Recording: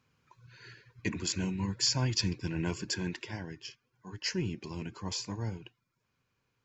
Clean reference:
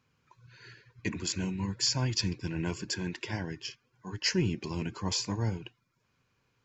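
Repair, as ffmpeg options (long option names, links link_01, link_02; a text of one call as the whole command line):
ffmpeg -i in.wav -af "asetnsamples=nb_out_samples=441:pad=0,asendcmd='3.23 volume volume 5dB',volume=0dB" out.wav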